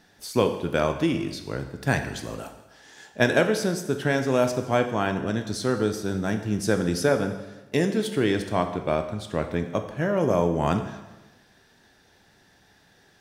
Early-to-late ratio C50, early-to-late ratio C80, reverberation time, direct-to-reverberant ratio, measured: 9.0 dB, 11.0 dB, 1.1 s, 6.5 dB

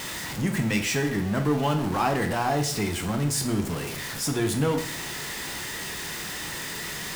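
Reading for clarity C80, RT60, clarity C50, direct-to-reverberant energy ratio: 13.0 dB, 0.55 s, 9.5 dB, 4.5 dB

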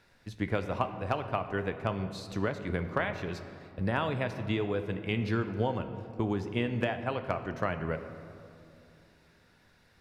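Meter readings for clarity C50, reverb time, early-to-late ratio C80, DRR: 10.0 dB, 2.6 s, 11.0 dB, 8.0 dB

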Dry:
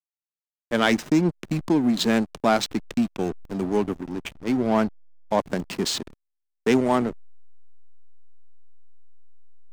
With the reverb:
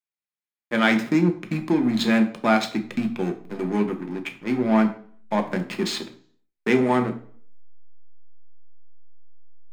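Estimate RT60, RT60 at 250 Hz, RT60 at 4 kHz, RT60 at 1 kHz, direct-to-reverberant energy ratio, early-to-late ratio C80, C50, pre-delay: 0.50 s, 0.60 s, 0.45 s, 0.50 s, 5.0 dB, 17.0 dB, 13.0 dB, 3 ms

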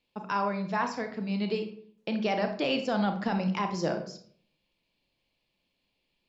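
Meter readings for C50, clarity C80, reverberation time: 9.5 dB, 13.5 dB, 0.55 s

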